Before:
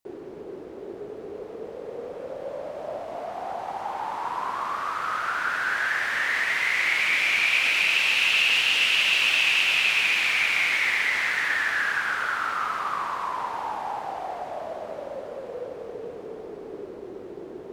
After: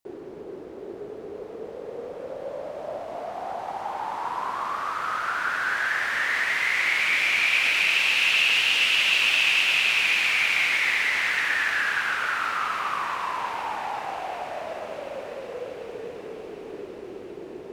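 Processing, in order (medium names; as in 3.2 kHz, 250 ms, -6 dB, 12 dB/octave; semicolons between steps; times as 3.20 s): thinning echo 739 ms, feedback 72%, high-pass 1.1 kHz, level -12.5 dB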